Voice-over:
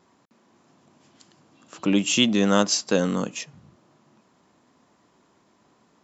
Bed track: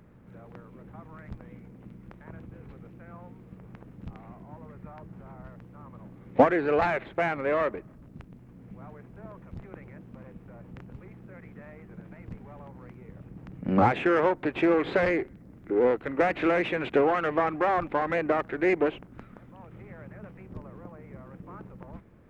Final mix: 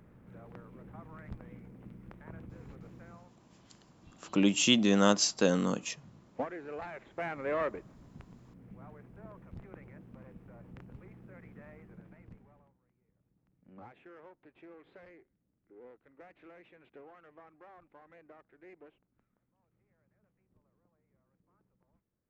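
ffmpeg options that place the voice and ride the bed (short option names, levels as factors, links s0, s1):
-filter_complex "[0:a]adelay=2500,volume=0.562[s0];[1:a]volume=2.82,afade=t=out:st=2.98:d=0.36:silence=0.188365,afade=t=in:st=6.92:d=0.71:silence=0.251189,afade=t=out:st=11.73:d=1.05:silence=0.0562341[s1];[s0][s1]amix=inputs=2:normalize=0"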